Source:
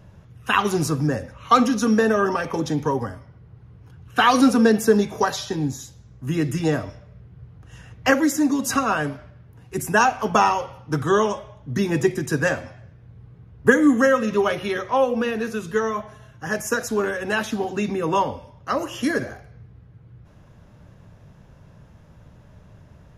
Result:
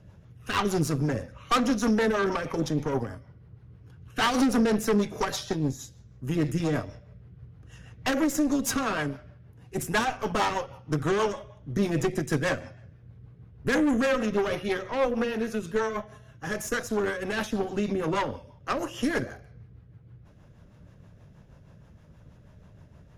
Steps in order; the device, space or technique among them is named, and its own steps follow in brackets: overdriven rotary cabinet (valve stage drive 20 dB, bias 0.75; rotary cabinet horn 6.3 Hz); trim +2 dB

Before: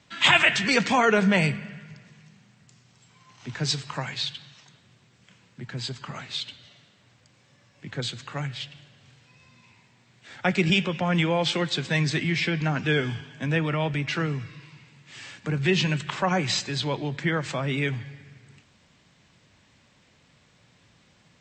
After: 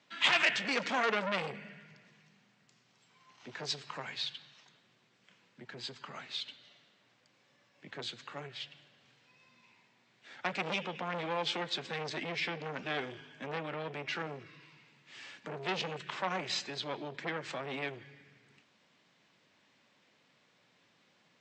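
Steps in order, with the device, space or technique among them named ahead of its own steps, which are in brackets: public-address speaker with an overloaded transformer (transformer saturation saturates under 3.2 kHz; band-pass 250–5700 Hz); trim -6.5 dB

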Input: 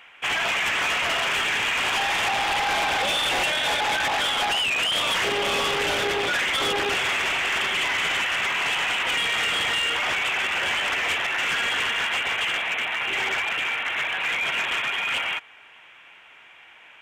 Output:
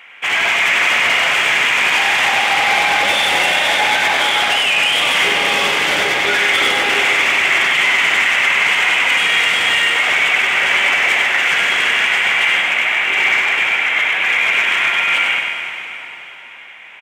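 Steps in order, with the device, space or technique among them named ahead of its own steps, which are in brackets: PA in a hall (high-pass 170 Hz 6 dB/octave; peaking EQ 2.1 kHz +7 dB 0.34 oct; delay 97 ms -5 dB; reverberation RT60 3.8 s, pre-delay 42 ms, DRR 3.5 dB); trim +4.5 dB

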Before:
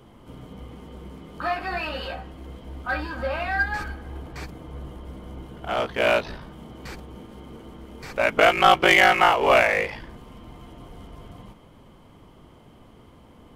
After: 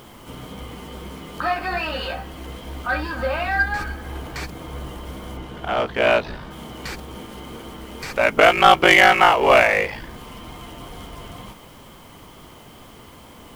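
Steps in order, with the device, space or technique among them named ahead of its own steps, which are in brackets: noise-reduction cassette on a plain deck (tape noise reduction on one side only encoder only; wow and flutter 27 cents; white noise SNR 33 dB); 5.37–6.51 s: treble shelf 6.5 kHz -10.5 dB; trim +3.5 dB

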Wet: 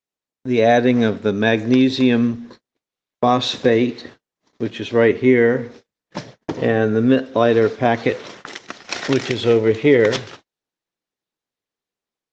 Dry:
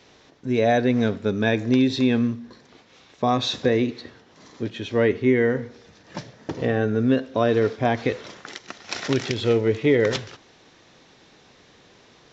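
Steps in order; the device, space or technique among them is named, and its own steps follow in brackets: video call (high-pass 150 Hz 6 dB/octave; level rider gain up to 4 dB; gate -41 dBFS, range -42 dB; trim +2.5 dB; Opus 24 kbps 48 kHz)

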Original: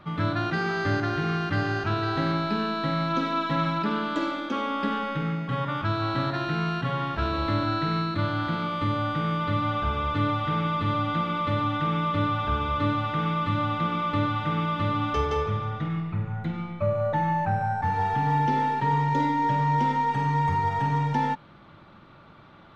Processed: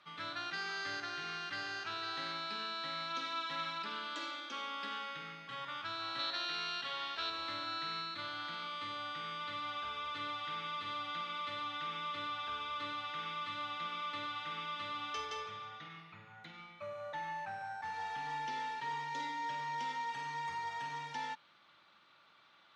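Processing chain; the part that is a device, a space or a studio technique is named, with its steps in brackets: piezo pickup straight into a mixer (low-pass 5.7 kHz 12 dB/octave; differentiator); 6.19–7.30 s: graphic EQ 125/500/4000 Hz -9/+3/+7 dB; trim +3 dB

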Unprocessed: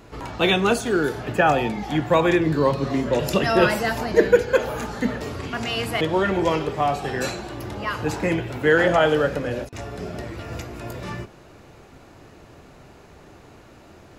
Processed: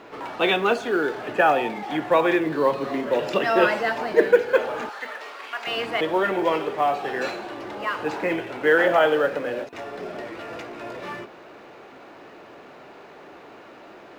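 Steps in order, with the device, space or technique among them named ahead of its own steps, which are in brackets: phone line with mismatched companding (band-pass 340–3200 Hz; companding laws mixed up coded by mu); 4.89–5.67 s: high-pass 880 Hz 12 dB/octave

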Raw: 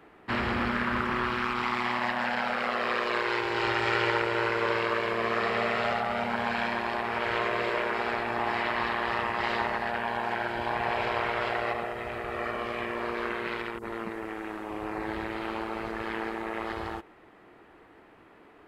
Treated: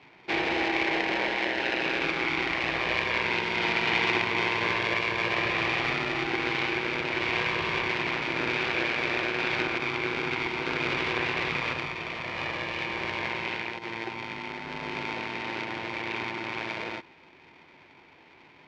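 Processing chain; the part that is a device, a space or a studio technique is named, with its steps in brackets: ring modulator pedal into a guitar cabinet (polarity switched at an audio rate 570 Hz; cabinet simulation 86–4600 Hz, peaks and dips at 110 Hz -6 dB, 220 Hz -8 dB, 360 Hz +7 dB, 1.3 kHz -7 dB, 2.3 kHz +8 dB)

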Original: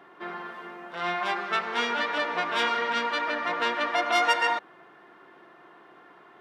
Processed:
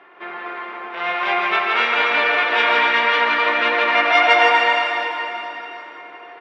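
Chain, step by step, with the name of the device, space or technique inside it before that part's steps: station announcement (band-pass 350–3700 Hz; peaking EQ 2.4 kHz +8 dB 0.55 oct; loudspeakers at several distances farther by 56 m -4 dB, 87 m -6 dB; reverberation RT60 3.7 s, pre-delay 93 ms, DRR 0.5 dB); trim +4 dB

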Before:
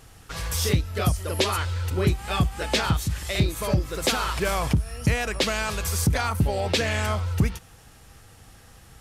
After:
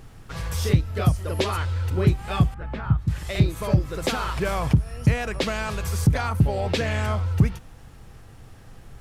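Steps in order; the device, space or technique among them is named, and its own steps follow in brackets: car interior (peaking EQ 130 Hz +6 dB 0.86 oct; treble shelf 3 kHz -8 dB; brown noise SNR 22 dB); 2.54–3.08 s: FFT filter 130 Hz 0 dB, 450 Hz -12 dB, 1.3 kHz -5 dB, 6.5 kHz -29 dB

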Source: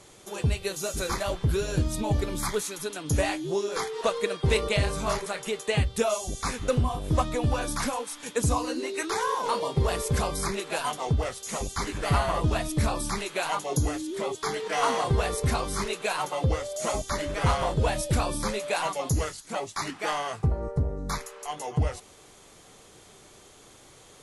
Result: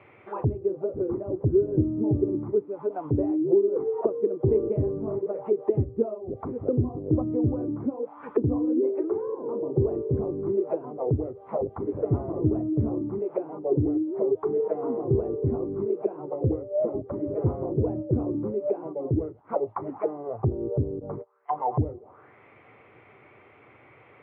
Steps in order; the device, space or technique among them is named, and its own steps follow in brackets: 20.99–21.51 s: gate -33 dBFS, range -26 dB; envelope filter bass rig (touch-sensitive low-pass 350–2600 Hz down, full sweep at -26 dBFS; cabinet simulation 90–2200 Hz, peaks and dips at 110 Hz +4 dB, 180 Hz -8 dB, 1.7 kHz -7 dB)

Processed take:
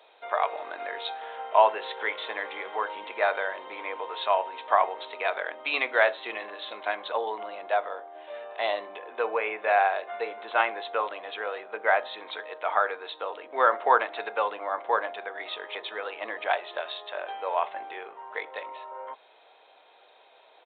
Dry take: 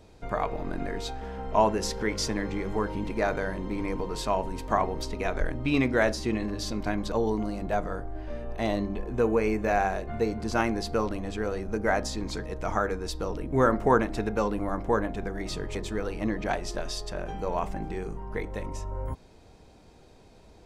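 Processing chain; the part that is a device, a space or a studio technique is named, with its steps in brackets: 7.88–8.34 s: peaking EQ 1.5 kHz -7 dB 0.73 oct; musical greeting card (resampled via 8 kHz; high-pass 590 Hz 24 dB/octave; peaking EQ 3.9 kHz +6.5 dB 0.56 oct); trim +4.5 dB

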